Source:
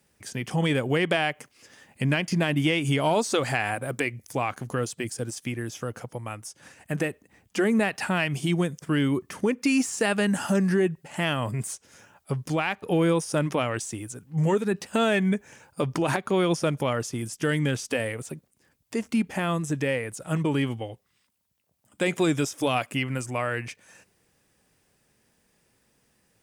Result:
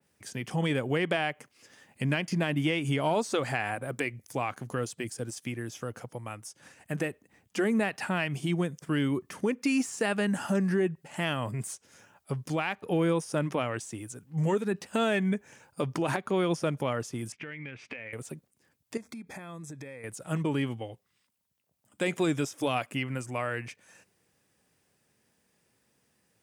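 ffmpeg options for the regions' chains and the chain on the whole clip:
-filter_complex "[0:a]asettb=1/sr,asplit=3[a][b][c];[a]atrim=end=17.324[d];[b]atrim=start=17.32:end=18.13,asetpts=PTS-STARTPTS,afade=t=in:d=0.004:c=qsin,afade=t=out:st=0.806:d=0.004:c=qsin,lowpass=f=2.3k:t=q:w=6.8,acompressor=threshold=-33dB:ratio=8:attack=3.2:release=140:knee=1:detection=peak[e];[c]atrim=start=18.126[f];[d][e]acrossfade=d=0.004:c1=hsin:c2=qsin[g];[g][f]acrossfade=d=0.004:c1=qsin:c2=hsin,asettb=1/sr,asplit=3[h][i][j];[h]atrim=end=18.974[k];[i]atrim=start=18.97:end=20.04,asetpts=PTS-STARTPTS,afade=t=in:d=0.004:c=qsin,afade=t=out:st=1.066:d=0.004:c=qsin,acompressor=threshold=-35dB:ratio=8:attack=3.2:release=140:knee=1:detection=peak,asuperstop=centerf=2900:order=8:qfactor=5.1[l];[j]atrim=start=20.036[m];[k][l]acrossfade=d=0.004:c1=hsin:c2=qsin[n];[n][m]acrossfade=d=0.004:c1=qsin:c2=hsin,highpass=76,adynamicequalizer=threshold=0.00891:dfrequency=2900:dqfactor=0.7:tfrequency=2900:tqfactor=0.7:attack=5:release=100:ratio=0.375:range=2:mode=cutabove:tftype=highshelf,volume=-4dB"

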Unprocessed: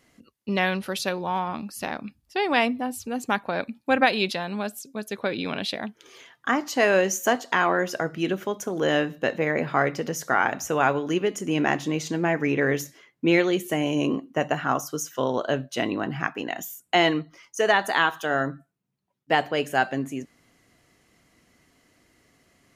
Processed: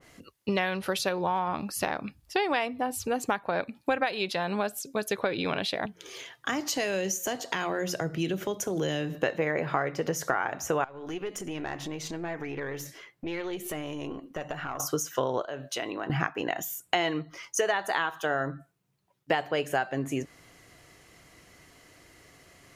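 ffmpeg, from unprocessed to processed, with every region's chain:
-filter_complex "[0:a]asettb=1/sr,asplit=3[a][b][c];[a]atrim=end=5.854[d];[b]atrim=start=5.85:end=9.15,asetpts=PTS-STARTPTS,afade=t=in:d=0.004:c=qsin,afade=t=out:st=3.296:d=0.004:c=qsin,equalizer=f=1.2k:w=0.92:g=-6,bandreject=f=88.67:t=h:w=4,bandreject=f=177.34:t=h:w=4,acrossover=split=210|3000[e][f][g];[f]acompressor=threshold=-39dB:ratio=2:attack=3.2:release=140:knee=2.83:detection=peak[h];[e][h][g]amix=inputs=3:normalize=0[i];[c]atrim=start=9.146[j];[d][i]acrossfade=d=0.004:c1=hsin:c2=qsin[k];[k][j]acrossfade=d=0.004:c1=qsin:c2=hsin,asettb=1/sr,asplit=3[l][m][n];[l]atrim=end=10.844[o];[m]atrim=start=10.84:end=14.8,asetpts=PTS-STARTPTS,afade=t=in:d=0.004:c=qsin,afade=t=out:st=3.956:d=0.004:c=qsin,bandreject=f=6.7k:w=23,acompressor=threshold=-37dB:ratio=4:attack=3.2:release=140:knee=1:detection=peak,aeval=exprs='(tanh(20*val(0)+0.55)-tanh(0.55))/20':c=same[p];[n]atrim=start=14.796[q];[o][p]acrossfade=d=0.004:c1=hsin:c2=qsin[r];[r][q]acrossfade=d=0.004:c1=qsin:c2=hsin,asettb=1/sr,asplit=3[s][t][u];[s]atrim=end=15.424[v];[t]atrim=start=15.42:end=16.1,asetpts=PTS-STARTPTS,afade=t=in:d=0.004:c=qsin,afade=t=out:st=0.676:d=0.004:c=qsin,highpass=f=300:p=1,acompressor=threshold=-39dB:ratio=3:attack=3.2:release=140:knee=1:detection=peak[w];[u]atrim=start=16.096[x];[v][w]acrossfade=d=0.004:c1=hsin:c2=qsin[y];[y][x]acrossfade=d=0.004:c1=qsin:c2=hsin,equalizer=f=230:t=o:w=0.51:g=-9.5,acompressor=threshold=-32dB:ratio=6,adynamicequalizer=threshold=0.00316:dfrequency=2000:dqfactor=0.7:tfrequency=2000:tqfactor=0.7:attack=5:release=100:ratio=0.375:range=2.5:mode=cutabove:tftype=highshelf,volume=7.5dB"

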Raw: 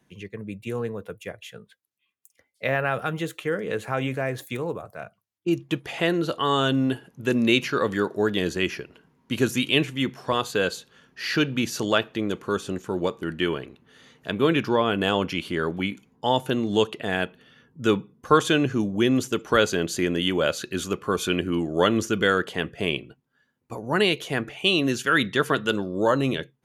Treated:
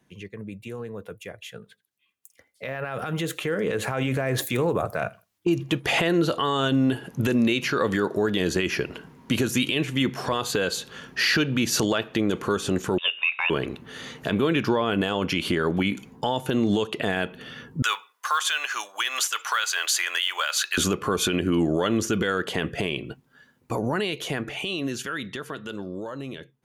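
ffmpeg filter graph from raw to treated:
-filter_complex "[0:a]asettb=1/sr,asplit=3[a][b][c];[a]atrim=end=1.544[d];[b]atrim=start=1.54:end=5.73,asetpts=PTS-STARTPTS,afade=t=in:d=0.004:c=qsin,afade=t=out:st=4.186:d=0.004:c=qsin,acompressor=threshold=-31dB:ratio=3:attack=3.2:release=140:knee=1:detection=peak,aecho=1:1:82|164:0.0631|0.0133,atrim=end_sample=184779[e];[c]atrim=start=5.726[f];[d][e]acrossfade=d=0.004:c1=hsin:c2=qsin[g];[g][f]acrossfade=d=0.004:c1=qsin:c2=hsin,asettb=1/sr,asplit=3[h][i][j];[h]atrim=end=12.984[k];[i]atrim=start=12.98:end=13.5,asetpts=PTS-STARTPTS,afade=t=in:d=0.004:c=qsin,afade=t=out:st=0.516:d=0.004:c=qsin,highpass=f=1.3k:t=q:w=8.5,lowpass=f=3.4k:t=q:w=0.5098,lowpass=f=3.4k:t=q:w=0.6013,lowpass=f=3.4k:t=q:w=0.9,lowpass=f=3.4k:t=q:w=2.563,afreqshift=-4000[l];[j]atrim=start=13.496[m];[k][l]acrossfade=d=0.004:c1=hsin:c2=qsin[n];[n][m]acrossfade=d=0.004:c1=qsin:c2=hsin,asettb=1/sr,asplit=3[o][p][q];[o]atrim=end=17.824[r];[p]atrim=start=17.82:end=20.78,asetpts=PTS-STARTPTS,afade=t=in:d=0.004:c=qsin,afade=t=out:st=2.956:d=0.004:c=qsin,highpass=f=1k:w=0.5412,highpass=f=1k:w=1.3066,acrusher=bits=7:mode=log:mix=0:aa=0.000001[s];[q]atrim=start=20.776[t];[r][s]acrossfade=d=0.004:c1=hsin:c2=qsin[u];[u][t]acrossfade=d=0.004:c1=qsin:c2=hsin,acompressor=threshold=-30dB:ratio=16,alimiter=level_in=3dB:limit=-24dB:level=0:latency=1:release=24,volume=-3dB,dynaudnorm=f=750:g=9:m=14dB"

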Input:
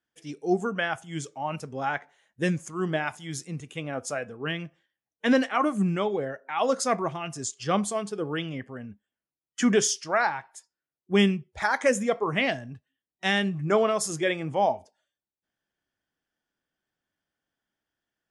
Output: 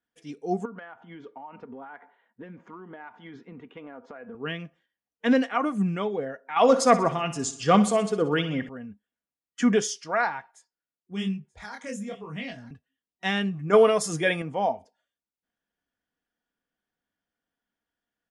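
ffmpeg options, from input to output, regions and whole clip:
-filter_complex "[0:a]asettb=1/sr,asplit=3[a][b][c];[a]atrim=end=0.654[d];[b]atrim=start=0.65:end=4.35,asetpts=PTS-STARTPTS,afade=t=in:d=0.004:c=qsin,afade=t=out:st=3.696:d=0.004:c=qsin,highpass=130,equalizer=f=150:t=q:w=4:g=-10,equalizer=f=230:t=q:w=4:g=7,equalizer=f=390:t=q:w=4:g=5,equalizer=f=940:t=q:w=4:g=9,equalizer=f=1.4k:t=q:w=4:g=3,equalizer=f=2.6k:t=q:w=4:g=-5,lowpass=f=2.9k:w=0.5412,lowpass=f=2.9k:w=1.3066,acompressor=threshold=-36dB:ratio=16:attack=3.2:release=140:knee=1:detection=peak[e];[c]atrim=start=4.346[f];[d][e]acrossfade=d=0.004:c1=hsin:c2=qsin[g];[g][f]acrossfade=d=0.004:c1=qsin:c2=hsin,asettb=1/sr,asplit=3[h][i][j];[h]atrim=end=6.564[k];[i]atrim=start=6.56:end=8.69,asetpts=PTS-STARTPTS,afade=t=in:d=0.004:c=qsin,afade=t=out:st=2.126:d=0.004:c=qsin,acontrast=88,aecho=1:1:62|124|186|248|310|372:0.2|0.112|0.0626|0.035|0.0196|0.011,atrim=end_sample=93933[l];[j]atrim=start=8.686[m];[k][l]acrossfade=d=0.004:c1=hsin:c2=qsin[n];[n][m]acrossfade=d=0.004:c1=qsin:c2=hsin,asettb=1/sr,asplit=3[o][p][q];[o]atrim=end=10.514[r];[p]atrim=start=10.51:end=12.71,asetpts=PTS-STARTPTS,afade=t=in:d=0.004:c=qsin,afade=t=out:st=2.196:d=0.004:c=qsin,flanger=delay=20:depth=6.4:speed=1.1,acrossover=split=230|3000[s][t][u];[t]acompressor=threshold=-57dB:ratio=1.5:attack=3.2:release=140:knee=2.83:detection=peak[v];[s][v][u]amix=inputs=3:normalize=0,aecho=1:1:935:0.106,atrim=end_sample=97020[w];[q]atrim=start=12.706[x];[r][w]acrossfade=d=0.004:c1=hsin:c2=qsin[y];[y][x]acrossfade=d=0.004:c1=qsin:c2=hsin,asettb=1/sr,asplit=3[z][aa][ab];[z]atrim=end=13.734[ac];[aa]atrim=start=13.73:end=14.42,asetpts=PTS-STARTPTS,afade=t=in:d=0.004:c=qsin,afade=t=out:st=0.686:d=0.004:c=qsin,aecho=1:1:6.7:0.38,atrim=end_sample=30429,acontrast=24,aeval=exprs='val(0)+0.00501*sin(2*PI*9200*n/s)':c=same[ad];[ab]atrim=start=14.416[ae];[ac][ad]acrossfade=d=0.004:c1=hsin:c2=qsin[af];[af][ae]acrossfade=d=0.004:c1=qsin:c2=hsin,highshelf=f=5.3k:g=-8.5,aecho=1:1:4.2:0.38,volume=-1.5dB"

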